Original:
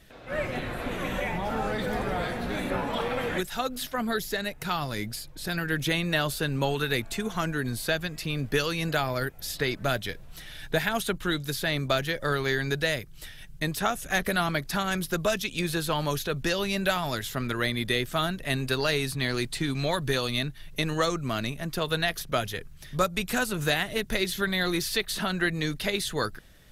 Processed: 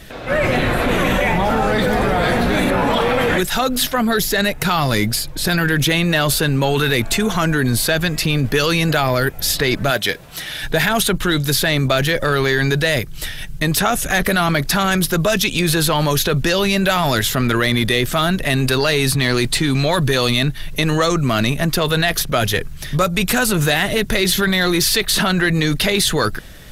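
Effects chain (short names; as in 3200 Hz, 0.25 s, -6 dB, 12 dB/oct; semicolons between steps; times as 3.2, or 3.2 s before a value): 9.9–10.63 HPF 420 Hz -> 190 Hz 6 dB/oct; in parallel at +2.5 dB: negative-ratio compressor -32 dBFS, ratio -1; on the sum: soft clip -11 dBFS, distortion -24 dB; gain +7 dB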